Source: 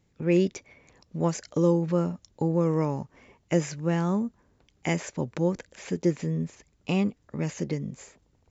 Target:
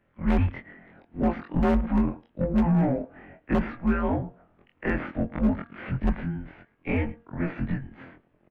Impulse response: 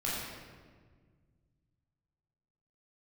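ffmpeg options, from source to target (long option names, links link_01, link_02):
-filter_complex "[0:a]afftfilt=real='re':imag='-im':win_size=2048:overlap=0.75,acrossover=split=260|1100|1400[link_01][link_02][link_03][link_04];[link_01]acrusher=bits=3:mix=0:aa=0.000001[link_05];[link_05][link_02][link_03][link_04]amix=inputs=4:normalize=0,asplit=2[link_06][link_07];[link_07]adelay=110,highpass=300,lowpass=3400,asoftclip=type=hard:threshold=-19.5dB,volume=-23dB[link_08];[link_06][link_08]amix=inputs=2:normalize=0,aeval=exprs='0.0944*(abs(mod(val(0)/0.0944+3,4)-2)-1)':channel_layout=same,lowshelf=frequency=85:gain=5.5,asplit=2[link_09][link_10];[link_10]highpass=frequency=720:poles=1,volume=18dB,asoftclip=type=tanh:threshold=-18.5dB[link_11];[link_09][link_11]amix=inputs=2:normalize=0,lowpass=frequency=1100:poles=1,volume=-6dB,equalizer=frequency=570:width=2.9:gain=4.5,highpass=frequency=270:width_type=q:width=0.5412,highpass=frequency=270:width_type=q:width=1.307,lowpass=frequency=3200:width_type=q:width=0.5176,lowpass=frequency=3200:width_type=q:width=0.7071,lowpass=frequency=3200:width_type=q:width=1.932,afreqshift=-300,volume=20.5dB,asoftclip=hard,volume=-20.5dB,bandreject=frequency=233.6:width_type=h:width=4,bandreject=frequency=467.2:width_type=h:width=4,bandreject=frequency=700.8:width_type=h:width=4,bandreject=frequency=934.4:width_type=h:width=4,bandreject=frequency=1168:width_type=h:width=4,bandreject=frequency=1401.6:width_type=h:width=4,bandreject=frequency=1635.2:width_type=h:width=4,volume=5dB"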